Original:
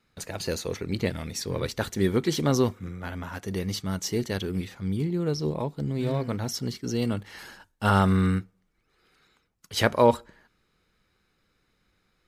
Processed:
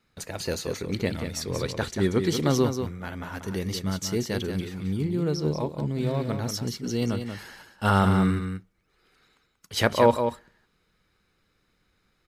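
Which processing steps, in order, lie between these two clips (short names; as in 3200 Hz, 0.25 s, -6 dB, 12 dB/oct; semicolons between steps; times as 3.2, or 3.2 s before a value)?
1.46–2.25 LPF 9900 Hz 12 dB/oct; echo 0.185 s -7.5 dB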